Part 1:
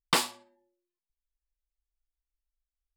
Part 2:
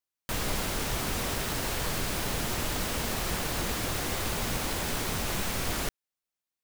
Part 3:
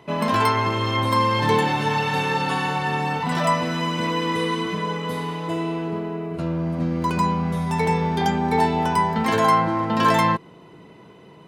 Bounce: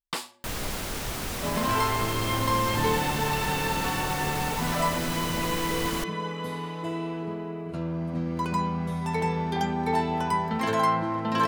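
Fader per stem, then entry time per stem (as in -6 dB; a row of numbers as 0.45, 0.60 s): -7.5, -1.5, -6.0 dB; 0.00, 0.15, 1.35 s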